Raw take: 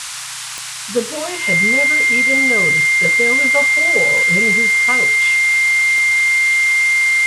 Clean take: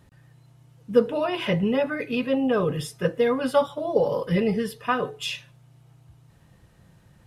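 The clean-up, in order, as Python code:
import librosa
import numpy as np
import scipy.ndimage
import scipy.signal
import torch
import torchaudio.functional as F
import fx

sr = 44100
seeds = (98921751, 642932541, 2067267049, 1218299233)

y = fx.fix_declick_ar(x, sr, threshold=10.0)
y = fx.notch(y, sr, hz=2100.0, q=30.0)
y = fx.noise_reduce(y, sr, print_start_s=0.25, print_end_s=0.75, reduce_db=28.0)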